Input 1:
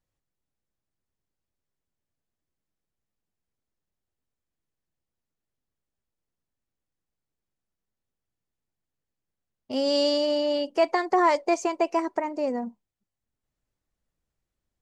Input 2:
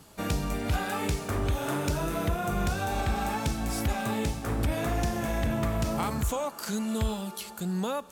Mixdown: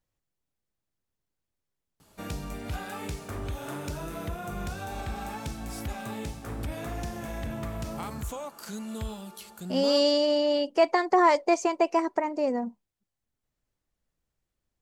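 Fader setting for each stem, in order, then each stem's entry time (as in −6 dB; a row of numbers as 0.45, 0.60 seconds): +0.5, −6.5 decibels; 0.00, 2.00 seconds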